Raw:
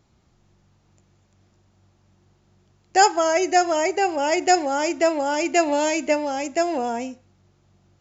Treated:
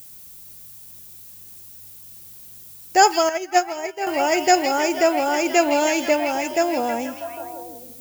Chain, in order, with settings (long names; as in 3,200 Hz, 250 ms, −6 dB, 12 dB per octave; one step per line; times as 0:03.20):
echo through a band-pass that steps 161 ms, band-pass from 3,600 Hz, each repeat −0.7 octaves, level −2 dB
background noise violet −44 dBFS
0:03.29–0:04.07: expander for the loud parts 2.5 to 1, over −27 dBFS
level +1.5 dB